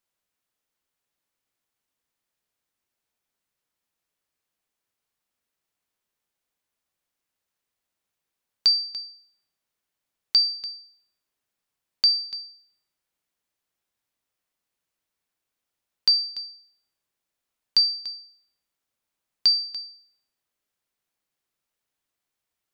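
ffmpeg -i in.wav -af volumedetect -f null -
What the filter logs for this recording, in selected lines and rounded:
mean_volume: -32.9 dB
max_volume: -9.9 dB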